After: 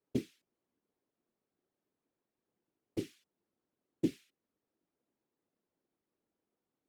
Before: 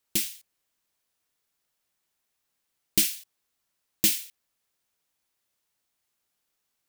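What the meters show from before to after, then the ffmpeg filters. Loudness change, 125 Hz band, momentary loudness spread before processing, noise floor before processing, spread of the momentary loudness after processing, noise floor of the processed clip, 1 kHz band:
-14.5 dB, -0.5 dB, 10 LU, -80 dBFS, 12 LU, under -85 dBFS, n/a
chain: -af "alimiter=limit=-15dB:level=0:latency=1:release=418,bandpass=f=300:t=q:w=2.2:csg=0,afftfilt=real='hypot(re,im)*cos(2*PI*random(0))':imag='hypot(re,im)*sin(2*PI*random(1))':win_size=512:overlap=0.75,volume=17dB"

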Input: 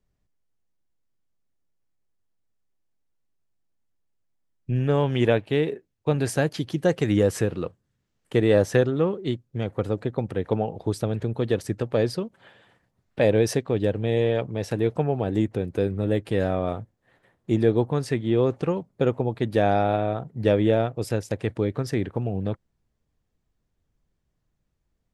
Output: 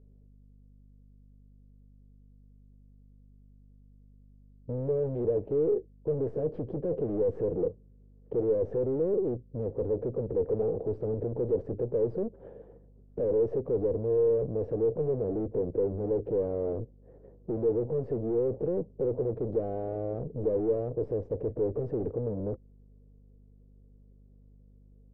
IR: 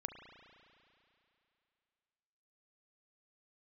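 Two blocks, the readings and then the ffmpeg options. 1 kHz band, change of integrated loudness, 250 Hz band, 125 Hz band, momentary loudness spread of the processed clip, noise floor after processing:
-16.0 dB, -6.0 dB, -9.0 dB, -10.5 dB, 7 LU, -57 dBFS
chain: -filter_complex "[0:a]asplit=2[a][b];[b]alimiter=limit=-18dB:level=0:latency=1,volume=0dB[c];[a][c]amix=inputs=2:normalize=0,aeval=exprs='(tanh(50.1*val(0)+0.5)-tanh(0.5))/50.1':c=same,lowpass=f=460:t=q:w=4.9,aeval=exprs='val(0)+0.00178*(sin(2*PI*50*n/s)+sin(2*PI*2*50*n/s)/2+sin(2*PI*3*50*n/s)/3+sin(2*PI*4*50*n/s)/4+sin(2*PI*5*50*n/s)/5)':c=same"

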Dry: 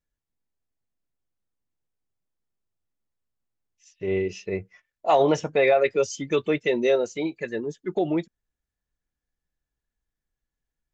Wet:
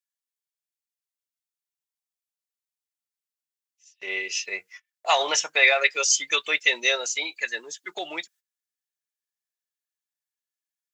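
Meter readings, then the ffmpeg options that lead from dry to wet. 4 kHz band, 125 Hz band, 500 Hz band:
+13.0 dB, under -30 dB, -9.0 dB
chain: -af "agate=range=-15dB:threshold=-49dB:ratio=16:detection=peak,highpass=1.3k,highshelf=f=2.9k:g=11,volume=6.5dB"

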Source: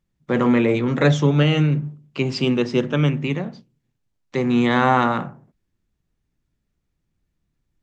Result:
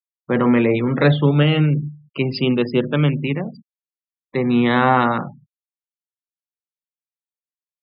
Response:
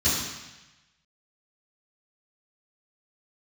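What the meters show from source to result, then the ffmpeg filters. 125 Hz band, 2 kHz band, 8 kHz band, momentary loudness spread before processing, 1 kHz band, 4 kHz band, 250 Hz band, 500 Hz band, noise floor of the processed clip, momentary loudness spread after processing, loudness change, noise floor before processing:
+1.5 dB, +1.5 dB, n/a, 11 LU, +1.5 dB, +1.0 dB, +1.5 dB, +1.5 dB, under -85 dBFS, 11 LU, +1.5 dB, -76 dBFS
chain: -af "aresample=11025,aresample=44100,afftfilt=real='re*gte(hypot(re,im),0.0224)':imag='im*gte(hypot(re,im),0.0224)':win_size=1024:overlap=0.75,volume=1.5dB"

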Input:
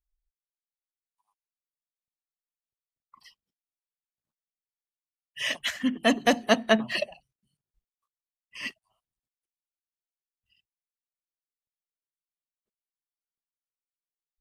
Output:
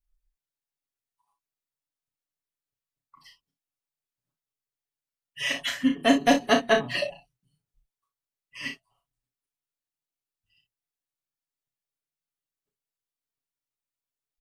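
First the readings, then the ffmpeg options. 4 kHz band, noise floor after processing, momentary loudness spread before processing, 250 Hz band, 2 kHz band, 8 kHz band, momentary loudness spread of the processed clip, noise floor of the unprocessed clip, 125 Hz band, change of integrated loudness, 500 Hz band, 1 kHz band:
+0.5 dB, under -85 dBFS, 15 LU, +2.5 dB, +1.0 dB, +1.0 dB, 15 LU, under -85 dBFS, +1.0 dB, +2.0 dB, +1.5 dB, +3.0 dB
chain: -filter_complex "[0:a]lowshelf=f=230:g=6.5,aecho=1:1:7.1:0.93,asplit=2[a][b];[b]aecho=0:1:33|58:0.531|0.266[c];[a][c]amix=inputs=2:normalize=0,volume=-3dB"

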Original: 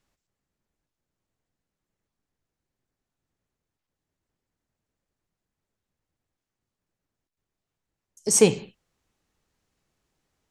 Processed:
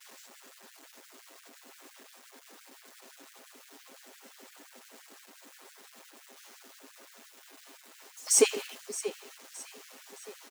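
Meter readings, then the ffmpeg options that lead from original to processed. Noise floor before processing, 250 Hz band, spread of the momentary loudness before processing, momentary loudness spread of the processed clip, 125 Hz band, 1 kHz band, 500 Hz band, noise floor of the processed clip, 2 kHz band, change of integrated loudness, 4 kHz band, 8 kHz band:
under -85 dBFS, -12.0 dB, 17 LU, 24 LU, under -30 dB, -3.0 dB, -5.5 dB, -57 dBFS, -1.0 dB, -9.0 dB, -1.0 dB, -2.0 dB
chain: -filter_complex "[0:a]aeval=exprs='val(0)+0.5*0.0335*sgn(val(0))':c=same,agate=range=-33dB:threshold=-30dB:ratio=3:detection=peak,equalizer=f=120:t=o:w=1.5:g=11,acrossover=split=100[a][b];[b]aecho=1:1:7.5:0.65[c];[a][c]amix=inputs=2:normalize=0,aecho=1:1:618|1236|1854|2472:0.188|0.081|0.0348|0.015,afftfilt=real='re*gte(b*sr/1024,210*pow(1500/210,0.5+0.5*sin(2*PI*5.8*pts/sr)))':imag='im*gte(b*sr/1024,210*pow(1500/210,0.5+0.5*sin(2*PI*5.8*pts/sr)))':win_size=1024:overlap=0.75,volume=-5dB"

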